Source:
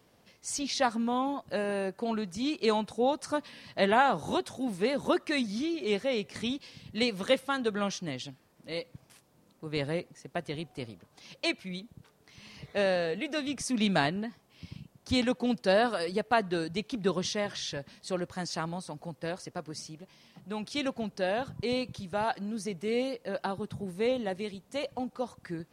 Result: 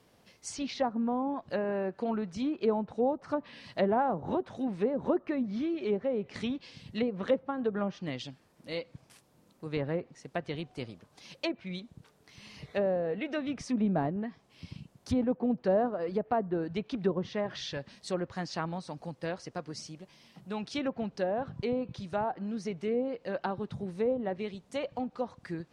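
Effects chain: low-pass that closes with the level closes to 730 Hz, closed at -25 dBFS

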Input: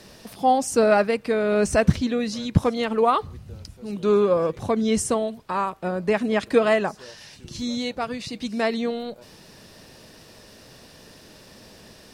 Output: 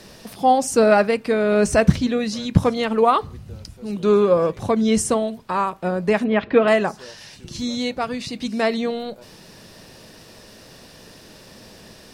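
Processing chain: 6.24–6.68 s: low-pass 3.2 kHz 24 dB/octave; on a send: reverberation RT60 0.30 s, pre-delay 4 ms, DRR 19 dB; on the sum: trim +3 dB

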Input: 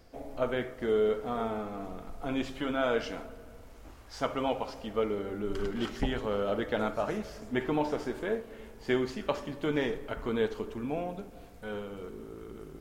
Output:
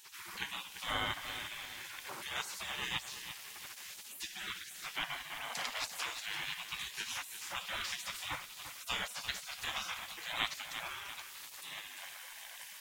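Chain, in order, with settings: in parallel at +2 dB: compression, threshold -40 dBFS, peak gain reduction 16 dB; on the sum: spectral gate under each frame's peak -30 dB weak; bit-crushed delay 343 ms, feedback 55%, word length 10-bit, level -9.5 dB; trim +10.5 dB

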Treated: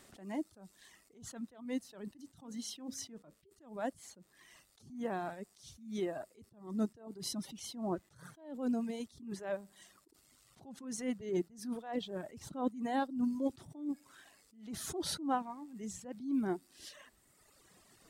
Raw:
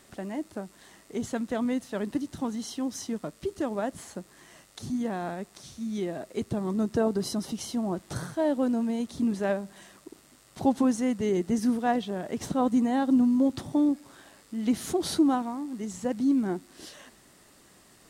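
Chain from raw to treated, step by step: 2.21–3.34 s: de-hum 67.31 Hz, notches 8; reverb removal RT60 1.7 s; attacks held to a fixed rise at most 120 dB/s; trim -3.5 dB

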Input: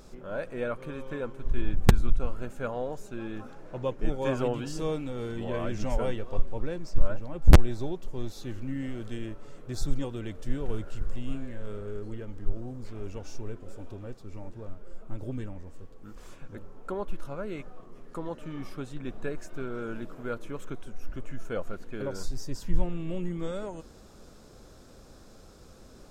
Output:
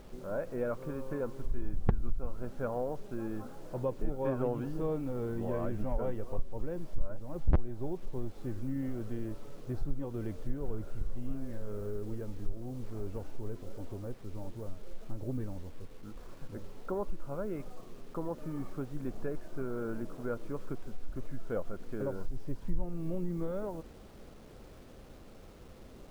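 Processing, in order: low-pass 1.2 kHz 12 dB/octave; word length cut 10-bit, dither none; compression 2:1, threshold -30 dBFS, peak gain reduction 13 dB

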